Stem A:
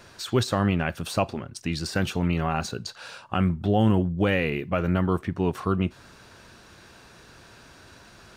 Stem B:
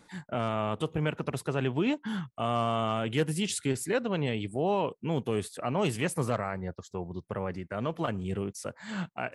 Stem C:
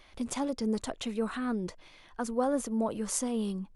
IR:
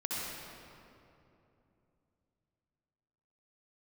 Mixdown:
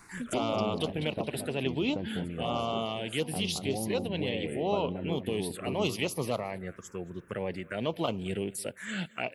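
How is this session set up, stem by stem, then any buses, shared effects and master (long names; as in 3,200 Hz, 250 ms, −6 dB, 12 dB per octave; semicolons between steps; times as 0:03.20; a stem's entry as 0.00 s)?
−2.5 dB, 0.00 s, no send, echo send −7.5 dB, low-pass filter 1,200 Hz 12 dB per octave; downward compressor, threshold −24 dBFS, peak gain reduction 8.5 dB
+1.0 dB, 0.00 s, no send, echo send −22 dB, high-shelf EQ 3,300 Hz +8.5 dB; speech leveller within 4 dB 2 s
+2.5 dB, 0.00 s, no send, echo send −20 dB, automatic ducking −13 dB, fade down 1.75 s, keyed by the first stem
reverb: not used
echo: repeating echo 222 ms, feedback 24%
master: low-shelf EQ 170 Hz −12 dB; phaser swept by the level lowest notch 550 Hz, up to 1,700 Hz, full sweep at −24 dBFS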